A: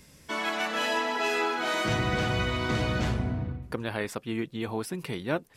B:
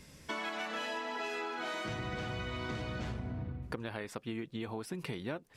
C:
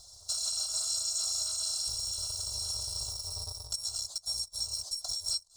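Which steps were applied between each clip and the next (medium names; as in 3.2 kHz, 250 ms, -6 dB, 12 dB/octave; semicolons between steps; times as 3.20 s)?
treble shelf 11 kHz -9.5 dB; compression 10:1, threshold -35 dBFS, peak gain reduction 12.5 dB
bit-reversed sample order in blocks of 256 samples; FFT filter 130 Hz 0 dB, 250 Hz -19 dB, 530 Hz +1 dB, 960 Hz +3 dB, 2.4 kHz -28 dB, 4 kHz +10 dB, 7.9 kHz +12 dB, 13 kHz -16 dB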